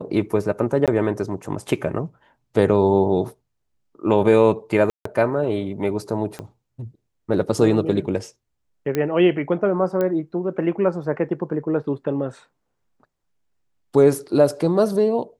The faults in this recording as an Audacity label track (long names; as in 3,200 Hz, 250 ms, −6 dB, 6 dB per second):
0.860000	0.880000	drop-out 17 ms
4.900000	5.050000	drop-out 154 ms
6.390000	6.390000	click −17 dBFS
8.950000	8.950000	click −10 dBFS
10.010000	10.010000	click −12 dBFS